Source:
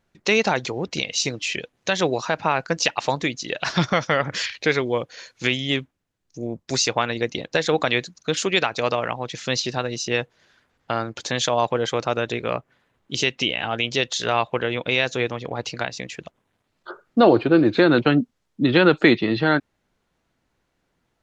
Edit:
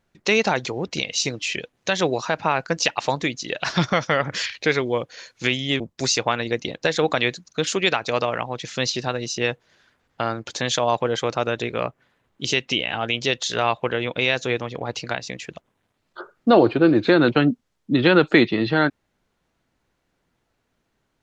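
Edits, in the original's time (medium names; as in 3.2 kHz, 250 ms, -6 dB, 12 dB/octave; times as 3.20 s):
5.80–6.50 s: delete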